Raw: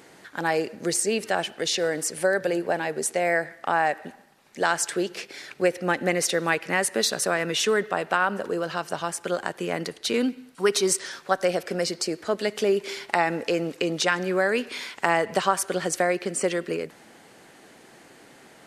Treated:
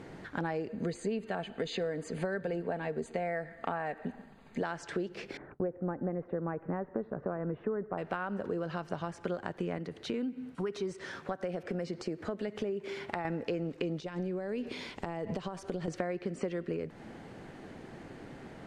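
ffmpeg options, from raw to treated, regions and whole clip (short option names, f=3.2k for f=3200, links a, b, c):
-filter_complex "[0:a]asettb=1/sr,asplit=3[a][b][c];[a]atrim=end=0.684[d];[b]atrim=start=0.68:end=4.62,asetpts=PTS-STARTPTS,afade=t=in:d=0.004:c=qsin,afade=t=out:st=3.936:d=0.004:c=qsin,asuperstop=centerf=5500:order=12:qfactor=5.2,aecho=1:1:4.4:0.4,atrim=end_sample=173754[e];[c]atrim=start=4.616[f];[d][e]acrossfade=d=0.004:c1=hsin:c2=qsin[g];[g][f]acrossfade=d=0.004:c1=qsin:c2=hsin,asettb=1/sr,asplit=3[h][i][j];[h]atrim=end=5.374[k];[i]atrim=start=5.37:end=7.98,asetpts=PTS-STARTPTS,afade=t=in:d=0.004:c=qsin,afade=t=out:st=2.606:d=0.004:c=qsin,agate=range=-33dB:threshold=-40dB:ratio=3:release=100:detection=peak,lowpass=f=1.3k:w=0.5412,lowpass=f=1.3k:w=1.3066[l];[j]atrim=start=7.976[m];[k][l]acrossfade=d=0.004:c1=hsin:c2=qsin[n];[n][m]acrossfade=d=0.004:c1=qsin:c2=hsin,asettb=1/sr,asplit=3[o][p][q];[o]atrim=end=9.784[r];[p]atrim=start=9.78:end=13.25,asetpts=PTS-STARTPTS,afade=t=in:d=0.004:c=qsin,afade=t=out:st=3.466:d=0.004:c=qsin,highpass=69,equalizer=f=4.7k:t=o:w=0.64:g=-4,acompressor=threshold=-40dB:ratio=1.5:attack=3.2:release=140:knee=1:detection=peak[s];[q]atrim=start=13.246[t];[r][s]acrossfade=d=0.004:c1=hsin:c2=qsin[u];[u][t]acrossfade=d=0.004:c1=qsin:c2=hsin,asettb=1/sr,asplit=3[v][w][x];[v]atrim=end=14.004[y];[w]atrim=start=14:end=15.88,asetpts=PTS-STARTPTS,afade=t=in:d=0.004:c=qsin,afade=t=out:st=1.876:d=0.004:c=qsin,acompressor=threshold=-31dB:ratio=4:attack=3.2:release=140:knee=1:detection=peak,equalizer=f=1.5k:t=o:w=1.3:g=-8[z];[x]atrim=start=15.876[aa];[y][z]acrossfade=d=0.004:c1=hsin:c2=qsin[ab];[ab][aa]acrossfade=d=0.004:c1=qsin:c2=hsin,acrossover=split=7500[ac][ad];[ad]acompressor=threshold=-51dB:ratio=4:attack=1:release=60[ae];[ac][ae]amix=inputs=2:normalize=0,aemphasis=mode=reproduction:type=riaa,acompressor=threshold=-32dB:ratio=6"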